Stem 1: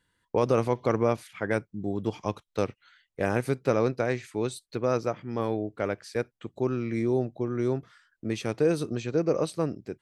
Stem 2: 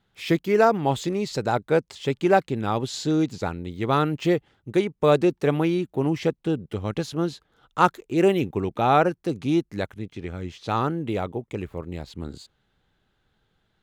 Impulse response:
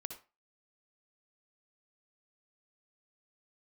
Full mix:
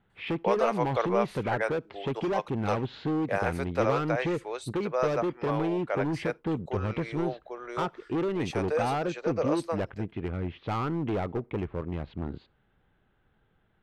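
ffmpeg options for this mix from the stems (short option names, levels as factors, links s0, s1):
-filter_complex "[0:a]highpass=f=540:w=0.5412,highpass=f=540:w=1.3066,adelay=100,volume=1.26[s0];[1:a]lowpass=f=3000:w=0.5412,lowpass=f=3000:w=1.3066,acompressor=threshold=0.0794:ratio=12,volume=22.4,asoftclip=hard,volume=0.0447,volume=1.12,asplit=2[s1][s2];[s2]volume=0.0944[s3];[2:a]atrim=start_sample=2205[s4];[s3][s4]afir=irnorm=-1:irlink=0[s5];[s0][s1][s5]amix=inputs=3:normalize=0,highshelf=f=3700:g=-8.5"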